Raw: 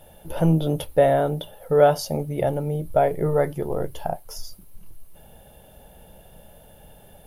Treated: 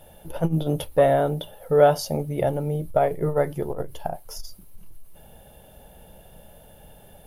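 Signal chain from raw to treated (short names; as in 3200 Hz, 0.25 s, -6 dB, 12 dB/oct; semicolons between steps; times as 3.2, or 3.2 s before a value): core saturation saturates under 210 Hz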